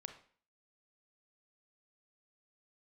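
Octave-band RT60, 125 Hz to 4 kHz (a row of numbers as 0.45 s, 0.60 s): 0.45 s, 0.50 s, 0.45 s, 0.45 s, 0.45 s, 0.45 s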